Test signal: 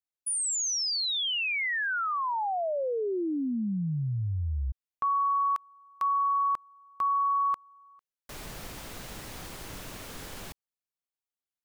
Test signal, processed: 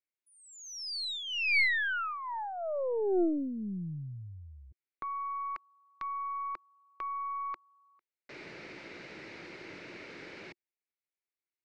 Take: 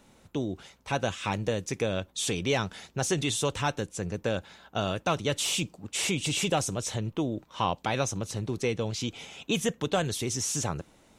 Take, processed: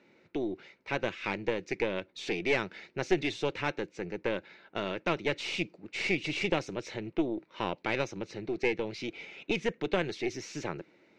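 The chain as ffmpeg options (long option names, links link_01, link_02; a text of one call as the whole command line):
ffmpeg -i in.wav -af "highpass=210,equalizer=frequency=240:width_type=q:width=4:gain=-4,equalizer=frequency=350:width_type=q:width=4:gain=7,equalizer=frequency=750:width_type=q:width=4:gain=-7,equalizer=frequency=1100:width_type=q:width=4:gain=-8,equalizer=frequency=2200:width_type=q:width=4:gain=8,equalizer=frequency=3300:width_type=q:width=4:gain=-9,lowpass=frequency=4300:width=0.5412,lowpass=frequency=4300:width=1.3066,aeval=exprs='0.251*(cos(1*acos(clip(val(0)/0.251,-1,1)))-cos(1*PI/2))+0.0355*(cos(4*acos(clip(val(0)/0.251,-1,1)))-cos(4*PI/2))+0.00141*(cos(8*acos(clip(val(0)/0.251,-1,1)))-cos(8*PI/2))':channel_layout=same,volume=-2dB" out.wav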